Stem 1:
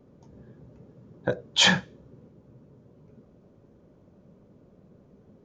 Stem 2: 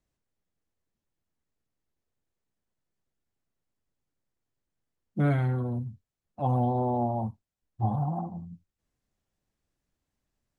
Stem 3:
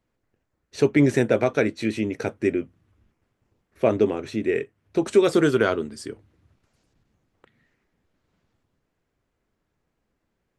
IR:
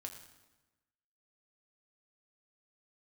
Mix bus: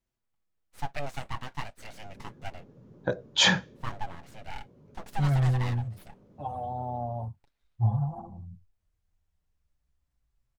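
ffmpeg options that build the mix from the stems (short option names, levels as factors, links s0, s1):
-filter_complex "[0:a]adelay=1800,volume=0.794[s0];[1:a]asubboost=boost=6.5:cutoff=98,asplit=2[s1][s2];[s2]adelay=5.6,afreqshift=-0.37[s3];[s1][s3]amix=inputs=2:normalize=1,volume=0.794[s4];[2:a]highpass=330,aecho=1:1:7.1:0.6,aeval=exprs='abs(val(0))':c=same,volume=0.224[s5];[s0][s4][s5]amix=inputs=3:normalize=0"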